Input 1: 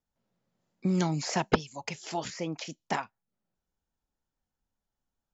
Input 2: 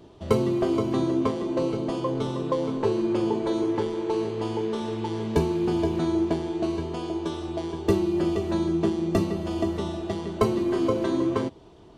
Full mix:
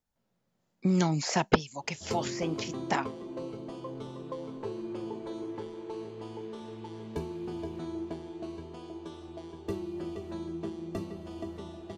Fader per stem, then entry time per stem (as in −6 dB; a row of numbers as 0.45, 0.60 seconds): +1.5, −13.0 decibels; 0.00, 1.80 seconds